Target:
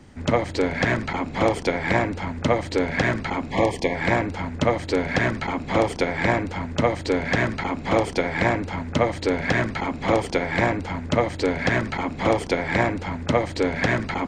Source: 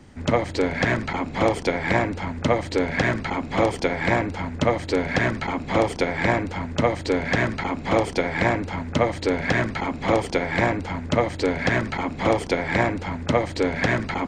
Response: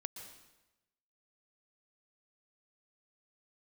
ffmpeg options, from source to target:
-filter_complex "[0:a]asettb=1/sr,asplit=3[s0][s1][s2];[s0]atrim=end=3.514[s3];[s1]atrim=start=3.51:end=3.95,asetpts=PTS-STARTPTS,afade=t=in:d=0.004:c=qsin,afade=t=out:st=0.436:d=0.004:c=qsin,asuperstop=centerf=1400:order=20:qfactor=2.8[s4];[s2]atrim=start=3.946[s5];[s3][s4]acrossfade=d=0.004:c1=hsin:c2=qsin[s6];[s6][s5]acrossfade=d=0.004:c1=qsin:c2=hsin"

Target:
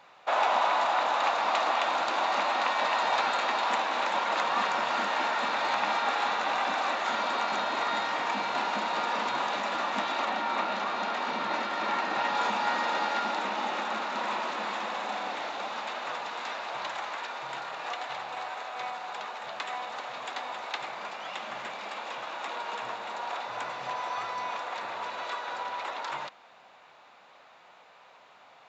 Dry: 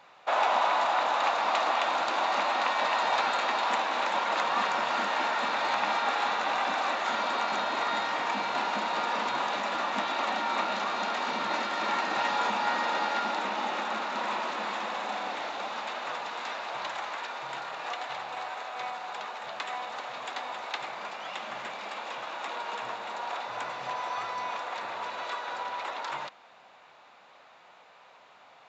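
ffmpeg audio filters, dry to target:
-filter_complex "[0:a]asettb=1/sr,asplit=3[s0][s1][s2];[s0]atrim=end=10.254[s3];[s1]atrim=start=10.25:end=12.35,asetpts=PTS-STARTPTS,afade=t=in:d=0.004:c=qsin,afade=t=out:st=2.096:d=0.004:c=qsin,highshelf=f=5400:g=-7.5[s4];[s2]atrim=start=12.346[s5];[s3][s4]acrossfade=d=0.004:c1=hsin:c2=qsin[s6];[s6][s5]acrossfade=d=0.004:c1=qsin:c2=hsin"

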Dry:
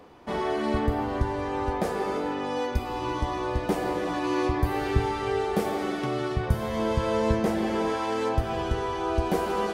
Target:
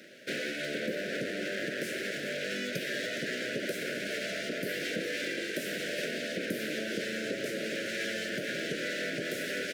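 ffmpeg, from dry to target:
-filter_complex "[0:a]aecho=1:1:416:0.237,aeval=exprs='abs(val(0))':c=same,highpass=f=180:w=0.5412,highpass=f=180:w=1.3066,lowshelf=f=430:g=-4.5,asplit=2[s0][s1];[s1]alimiter=level_in=1.41:limit=0.0631:level=0:latency=1,volume=0.708,volume=1.41[s2];[s0][s2]amix=inputs=2:normalize=0,acompressor=threshold=0.0398:ratio=6,asuperstop=centerf=970:order=12:qfactor=1.1"

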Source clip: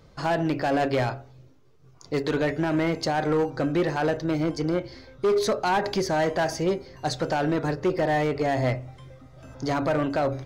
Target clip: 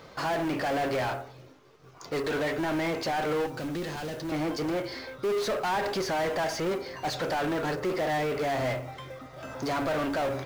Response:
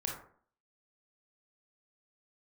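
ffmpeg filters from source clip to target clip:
-filter_complex "[0:a]asplit=2[s0][s1];[s1]highpass=f=720:p=1,volume=17.8,asoftclip=type=tanh:threshold=0.133[s2];[s0][s2]amix=inputs=2:normalize=0,lowpass=f=3100:p=1,volume=0.501,acrusher=bits=6:mode=log:mix=0:aa=0.000001,asettb=1/sr,asplit=3[s3][s4][s5];[s3]atrim=end=3.464[s6];[s4]atrim=start=3.46:end=4.32,asetpts=PTS-STARTPTS,afade=t=in:d=0.004:c=qsin,afade=t=out:st=0.856:d=0.004:c=qsin,acrossover=split=280|3000[s7][s8][s9];[s8]acompressor=threshold=0.0178:ratio=2.5[s10];[s7][s10][s9]amix=inputs=3:normalize=0[s11];[s5]atrim=start=4.316[s12];[s6][s11]acrossfade=d=0.004:c1=hsin:c2=qsin[s13];[s13][s12]acrossfade=d=0.004:c1=qsin:c2=hsin,volume=0.501"

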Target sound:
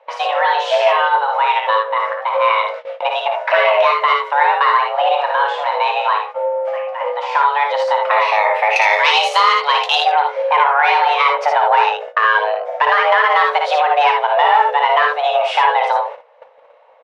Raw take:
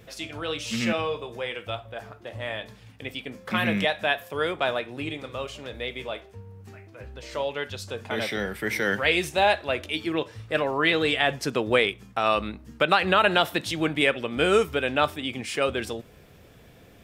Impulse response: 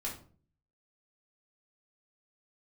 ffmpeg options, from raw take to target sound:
-af "aeval=exprs='(tanh(6.31*val(0)+0.4)-tanh(0.4))/6.31':c=same,asetnsamples=n=441:p=0,asendcmd='8.76 lowpass f 4100;10.04 lowpass f 1500',lowpass=1600,afreqshift=430,lowshelf=f=240:g=-2.5,acompressor=threshold=0.02:ratio=4,equalizer=f=61:t=o:w=0.62:g=10,aecho=1:1:26|57|76:0.178|0.562|0.501,agate=range=0.112:threshold=0.00398:ratio=16:detection=peak,alimiter=level_in=12.6:limit=0.891:release=50:level=0:latency=1,volume=0.891"

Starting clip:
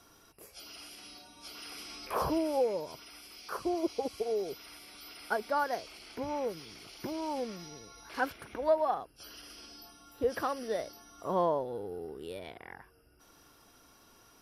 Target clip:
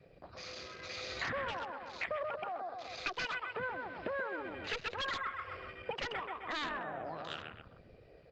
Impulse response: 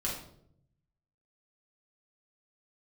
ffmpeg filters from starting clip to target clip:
-filter_complex "[0:a]aecho=1:1:222|444|666|888|1110:0.562|0.219|0.0855|0.0334|0.013,acrossover=split=450[s0][s1];[s0]alimiter=level_in=3.16:limit=0.0631:level=0:latency=1:release=11,volume=0.316[s2];[s2][s1]amix=inputs=2:normalize=0,adynamicequalizer=threshold=0.00158:dfrequency=260:dqfactor=4.7:tfrequency=260:tqfactor=4.7:attack=5:release=100:ratio=0.375:range=2:mode=cutabove:tftype=bell,asetrate=76440,aresample=44100,aresample=11025,aeval=exprs='0.0422*(abs(mod(val(0)/0.0422+3,4)-2)-1)':c=same,aresample=44100,acompressor=threshold=0.00562:ratio=4,afwtdn=0.00158,equalizer=f=880:t=o:w=0.55:g=-9.5,volume=3.35" -ar 48000 -c:a libopus -b:a 32k

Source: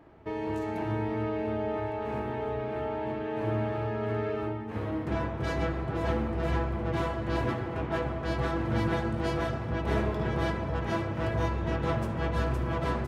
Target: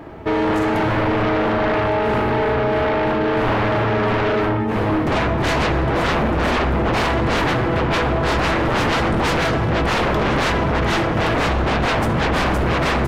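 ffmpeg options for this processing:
-af "aeval=exprs='0.178*sin(PI/2*5.62*val(0)/0.178)':c=same,bandreject=f=50:t=h:w=6,bandreject=f=100:t=h:w=6"

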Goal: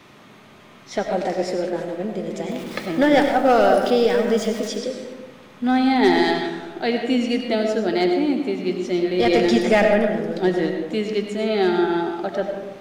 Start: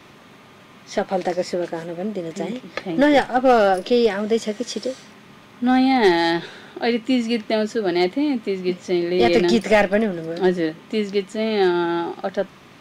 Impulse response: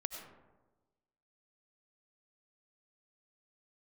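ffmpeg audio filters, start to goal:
-filter_complex "[0:a]asettb=1/sr,asplit=3[s0][s1][s2];[s0]atrim=end=2.494[s3];[s1]atrim=start=2.49:end=4.68,asetpts=PTS-STARTPTS,afade=t=in:d=0.004:c=qsin,afade=t=out:st=2.186:d=0.004:c=qsin,aeval=exprs='val(0)+0.5*0.02*sgn(val(0))':c=same[s4];[s2]atrim=start=4.676[s5];[s3][s4]acrossfade=d=0.004:c1=hsin:c2=qsin[s6];[s6][s5]acrossfade=d=0.004:c1=qsin:c2=hsin[s7];[1:a]atrim=start_sample=2205[s8];[s7][s8]afir=irnorm=-1:irlink=0"

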